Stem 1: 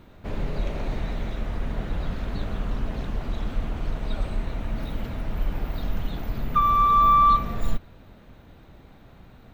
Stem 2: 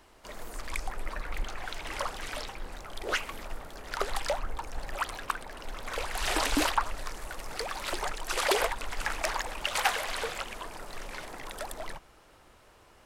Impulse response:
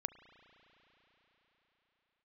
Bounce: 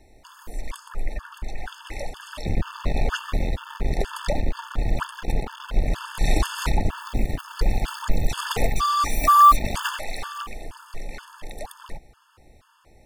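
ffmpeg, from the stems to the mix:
-filter_complex "[0:a]adynamicequalizer=threshold=0.00708:dfrequency=2600:dqfactor=1.6:tfrequency=2600:tqfactor=1.6:attack=5:release=100:ratio=0.375:range=2:mode=boostabove:tftype=bell,aphaser=in_gain=1:out_gain=1:delay=3.6:decay=0.49:speed=0.21:type=triangular,acrusher=bits=3:mix=0:aa=0.5,adelay=2200,volume=-2dB,asplit=3[link_01][link_02][link_03];[link_02]volume=-5.5dB[link_04];[link_03]volume=-21.5dB[link_05];[1:a]lowshelf=frequency=240:gain=8.5,volume=2dB[link_06];[2:a]atrim=start_sample=2205[link_07];[link_04][link_07]afir=irnorm=-1:irlink=0[link_08];[link_05]aecho=0:1:941:1[link_09];[link_01][link_06][link_08][link_09]amix=inputs=4:normalize=0,afftfilt=real='re*gt(sin(2*PI*2.1*pts/sr)*(1-2*mod(floor(b*sr/1024/890),2)),0)':imag='im*gt(sin(2*PI*2.1*pts/sr)*(1-2*mod(floor(b*sr/1024/890),2)),0)':win_size=1024:overlap=0.75"

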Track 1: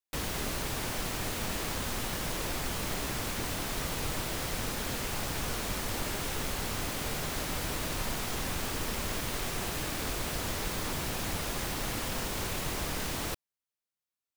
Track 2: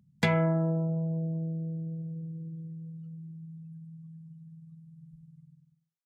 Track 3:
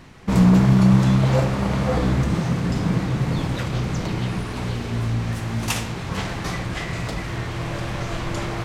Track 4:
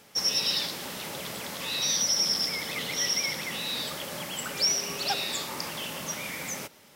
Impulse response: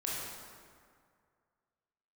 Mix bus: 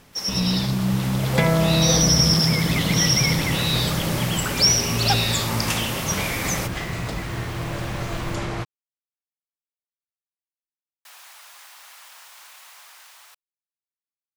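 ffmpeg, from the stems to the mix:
-filter_complex "[0:a]highpass=frequency=850:width=0.5412,highpass=frequency=850:width=1.3066,volume=-17dB,asplit=3[link_01][link_02][link_03];[link_01]atrim=end=8.35,asetpts=PTS-STARTPTS,afade=type=out:start_time=8.346:duration=0.004:curve=hsin[link_04];[link_02]atrim=start=8.35:end=11.05,asetpts=PTS-STARTPTS,volume=0[link_05];[link_03]atrim=start=11.05,asetpts=PTS-STARTPTS,afade=type=in:duration=0.004:curve=hsin[link_06];[link_04][link_05][link_06]concat=n=3:v=0:a=1[link_07];[1:a]adelay=1150,volume=0.5dB[link_08];[2:a]volume=-9.5dB[link_09];[3:a]volume=-0.5dB[link_10];[link_07][link_08][link_09][link_10]amix=inputs=4:normalize=0,dynaudnorm=framelen=150:gausssize=17:maxgain=8.5dB"

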